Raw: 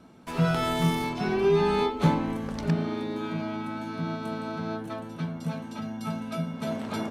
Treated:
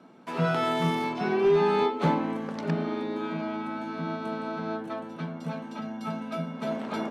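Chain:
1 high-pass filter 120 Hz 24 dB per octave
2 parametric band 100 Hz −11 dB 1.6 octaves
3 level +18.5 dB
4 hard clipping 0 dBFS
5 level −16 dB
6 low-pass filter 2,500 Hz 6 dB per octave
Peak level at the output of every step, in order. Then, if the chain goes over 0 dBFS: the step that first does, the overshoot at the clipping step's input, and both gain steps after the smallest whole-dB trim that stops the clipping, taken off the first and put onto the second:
−11.0, −14.0, +4.5, 0.0, −16.0, −16.0 dBFS
step 3, 4.5 dB
step 3 +13.5 dB, step 5 −11 dB

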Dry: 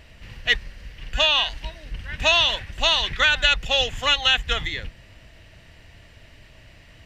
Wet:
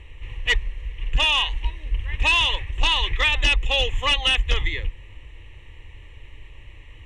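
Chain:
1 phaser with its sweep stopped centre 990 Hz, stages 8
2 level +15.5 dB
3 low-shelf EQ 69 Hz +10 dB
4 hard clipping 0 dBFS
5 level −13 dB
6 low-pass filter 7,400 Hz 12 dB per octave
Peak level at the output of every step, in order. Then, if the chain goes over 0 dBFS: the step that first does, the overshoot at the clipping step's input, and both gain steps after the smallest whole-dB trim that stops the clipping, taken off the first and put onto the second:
−7.5, +8.0, +9.5, 0.0, −13.0, −12.0 dBFS
step 2, 9.5 dB
step 2 +5.5 dB, step 5 −3 dB

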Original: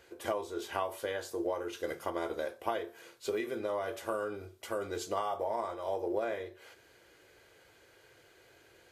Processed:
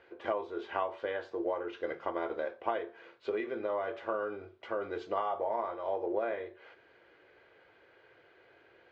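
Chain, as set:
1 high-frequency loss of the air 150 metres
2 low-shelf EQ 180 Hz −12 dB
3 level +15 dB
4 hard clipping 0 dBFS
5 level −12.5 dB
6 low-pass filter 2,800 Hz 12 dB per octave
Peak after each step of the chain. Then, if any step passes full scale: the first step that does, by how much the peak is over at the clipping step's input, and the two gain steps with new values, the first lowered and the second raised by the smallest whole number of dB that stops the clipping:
−18.0, −19.0, −4.0, −4.0, −16.5, −16.5 dBFS
no step passes full scale

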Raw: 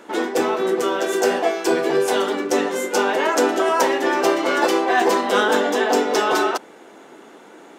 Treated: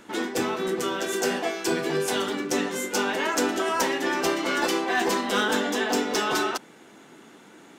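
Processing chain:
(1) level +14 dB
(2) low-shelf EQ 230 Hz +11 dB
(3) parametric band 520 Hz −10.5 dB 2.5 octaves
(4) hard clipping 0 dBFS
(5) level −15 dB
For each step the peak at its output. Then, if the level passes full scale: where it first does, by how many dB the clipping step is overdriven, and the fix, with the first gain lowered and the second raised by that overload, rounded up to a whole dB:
+7.5, +10.5, +5.5, 0.0, −15.0 dBFS
step 1, 5.5 dB
step 1 +8 dB, step 5 −9 dB

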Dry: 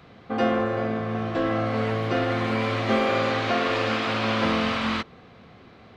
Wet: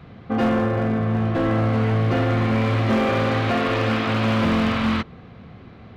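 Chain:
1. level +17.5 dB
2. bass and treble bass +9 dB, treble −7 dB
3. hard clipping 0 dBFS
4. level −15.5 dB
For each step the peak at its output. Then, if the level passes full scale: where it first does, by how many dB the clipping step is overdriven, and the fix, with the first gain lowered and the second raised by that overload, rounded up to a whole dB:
+7.0, +9.0, 0.0, −15.5 dBFS
step 1, 9.0 dB
step 1 +8.5 dB, step 4 −6.5 dB

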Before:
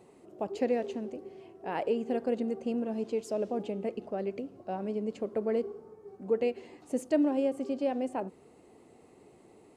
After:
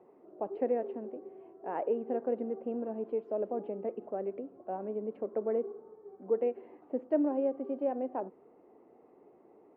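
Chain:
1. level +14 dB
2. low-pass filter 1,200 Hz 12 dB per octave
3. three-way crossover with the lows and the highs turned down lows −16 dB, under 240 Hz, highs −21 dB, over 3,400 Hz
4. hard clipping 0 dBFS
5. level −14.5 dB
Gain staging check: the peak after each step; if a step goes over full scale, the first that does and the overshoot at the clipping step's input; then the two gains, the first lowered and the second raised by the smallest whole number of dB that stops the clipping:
−1.5, −2.0, −3.0, −3.0, −17.5 dBFS
no step passes full scale

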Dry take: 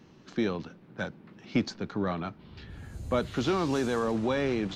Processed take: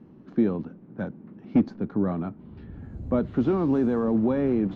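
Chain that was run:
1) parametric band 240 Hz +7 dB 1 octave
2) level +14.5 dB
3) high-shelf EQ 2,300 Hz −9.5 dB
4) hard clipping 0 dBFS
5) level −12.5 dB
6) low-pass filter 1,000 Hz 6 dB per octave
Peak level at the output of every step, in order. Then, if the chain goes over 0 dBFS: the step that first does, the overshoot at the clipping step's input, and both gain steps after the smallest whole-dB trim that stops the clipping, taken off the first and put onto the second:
−10.0, +4.5, +4.0, 0.0, −12.5, −12.5 dBFS
step 2, 4.0 dB
step 2 +10.5 dB, step 5 −8.5 dB

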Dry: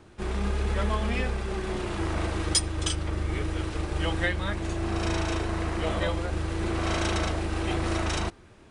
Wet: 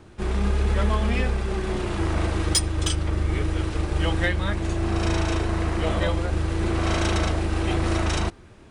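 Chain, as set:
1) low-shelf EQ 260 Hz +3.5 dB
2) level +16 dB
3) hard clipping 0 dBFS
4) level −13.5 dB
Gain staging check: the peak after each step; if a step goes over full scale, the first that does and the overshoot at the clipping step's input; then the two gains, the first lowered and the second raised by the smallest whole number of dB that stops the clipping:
−12.5, +3.5, 0.0, −13.5 dBFS
step 2, 3.5 dB
step 2 +12 dB, step 4 −9.5 dB

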